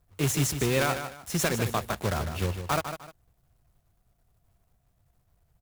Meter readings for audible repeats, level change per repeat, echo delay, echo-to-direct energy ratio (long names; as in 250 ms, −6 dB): 2, −10.5 dB, 152 ms, −8.5 dB